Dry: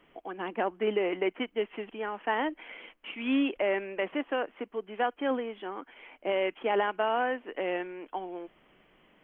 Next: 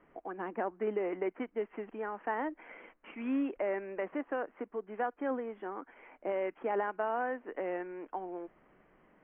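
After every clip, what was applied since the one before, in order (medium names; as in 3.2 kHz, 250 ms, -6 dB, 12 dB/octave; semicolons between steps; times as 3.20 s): low-pass 1.9 kHz 24 dB/octave; in parallel at +1 dB: compression, threshold -36 dBFS, peak gain reduction 12 dB; on the sum: trim -7.5 dB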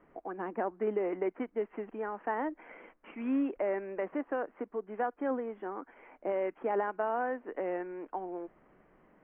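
treble shelf 2.8 kHz -10 dB; trim +2 dB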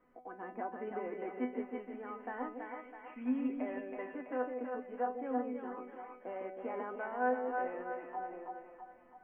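feedback comb 250 Hz, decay 0.26 s, harmonics all, mix 90%; two-band feedback delay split 600 Hz, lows 156 ms, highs 328 ms, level -4 dB; trim +5 dB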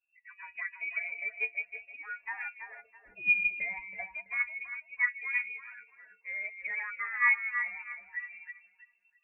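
expander on every frequency bin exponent 2; frequency inversion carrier 2.7 kHz; trim +9 dB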